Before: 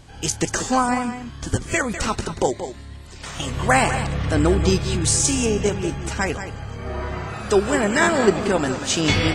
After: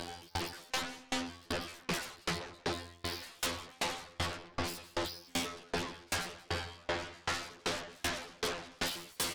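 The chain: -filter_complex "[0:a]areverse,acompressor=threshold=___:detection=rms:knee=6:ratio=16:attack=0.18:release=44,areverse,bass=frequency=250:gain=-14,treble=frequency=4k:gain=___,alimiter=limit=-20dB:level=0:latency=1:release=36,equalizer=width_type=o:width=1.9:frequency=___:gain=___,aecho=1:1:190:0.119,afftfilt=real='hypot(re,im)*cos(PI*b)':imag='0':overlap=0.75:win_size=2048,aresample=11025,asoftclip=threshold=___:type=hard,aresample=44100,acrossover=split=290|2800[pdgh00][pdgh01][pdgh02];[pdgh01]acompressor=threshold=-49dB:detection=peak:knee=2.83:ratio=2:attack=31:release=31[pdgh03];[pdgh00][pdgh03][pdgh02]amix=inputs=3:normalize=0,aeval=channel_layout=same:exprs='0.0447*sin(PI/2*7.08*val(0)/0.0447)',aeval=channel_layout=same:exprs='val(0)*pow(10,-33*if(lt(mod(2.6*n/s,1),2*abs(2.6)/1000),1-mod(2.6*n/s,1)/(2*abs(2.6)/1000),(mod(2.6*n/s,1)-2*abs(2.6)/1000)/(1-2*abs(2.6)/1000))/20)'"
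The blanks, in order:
-25dB, 10, 970, 2, -31.5dB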